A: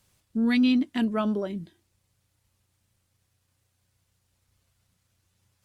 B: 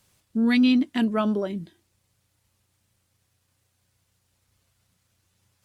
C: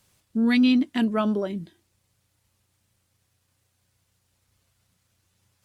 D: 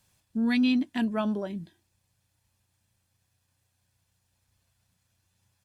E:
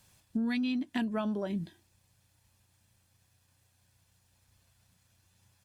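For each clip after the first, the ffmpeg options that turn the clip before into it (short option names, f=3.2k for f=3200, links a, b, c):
-af "lowshelf=f=74:g=-6.5,volume=3dB"
-af anull
-af "aecho=1:1:1.2:0.31,volume=-4.5dB"
-af "acompressor=threshold=-33dB:ratio=16,volume=4.5dB"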